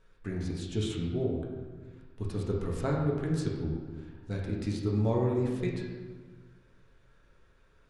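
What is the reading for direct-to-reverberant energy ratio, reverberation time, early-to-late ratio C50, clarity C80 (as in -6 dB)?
-2.5 dB, 1.4 s, 2.5 dB, 4.0 dB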